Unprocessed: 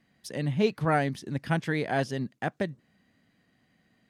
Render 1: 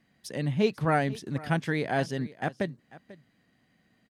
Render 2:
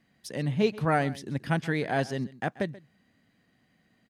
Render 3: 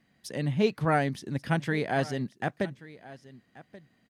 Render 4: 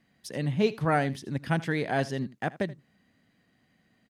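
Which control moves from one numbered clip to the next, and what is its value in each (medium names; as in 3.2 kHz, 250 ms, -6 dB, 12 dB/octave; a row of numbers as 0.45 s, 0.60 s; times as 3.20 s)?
delay, time: 492 ms, 133 ms, 1132 ms, 80 ms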